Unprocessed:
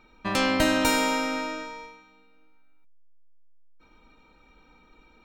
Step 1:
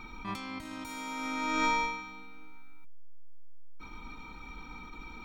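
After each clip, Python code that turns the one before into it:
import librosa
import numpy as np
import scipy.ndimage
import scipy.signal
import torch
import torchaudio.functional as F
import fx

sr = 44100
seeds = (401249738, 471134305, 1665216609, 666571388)

y = fx.over_compress(x, sr, threshold_db=-37.0, ratio=-1.0)
y = y + 0.66 * np.pad(y, (int(0.9 * sr / 1000.0), 0))[:len(y)]
y = fx.attack_slew(y, sr, db_per_s=160.0)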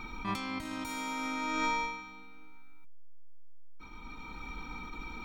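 y = fx.rider(x, sr, range_db=3, speed_s=0.5)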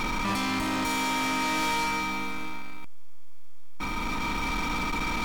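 y = fx.bin_compress(x, sr, power=0.6)
y = fx.leveller(y, sr, passes=5)
y = y * 10.0 ** (-5.0 / 20.0)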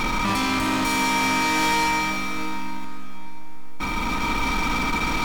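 y = fx.rev_plate(x, sr, seeds[0], rt60_s=4.6, hf_ratio=0.75, predelay_ms=0, drr_db=7.0)
y = y * 10.0 ** (5.0 / 20.0)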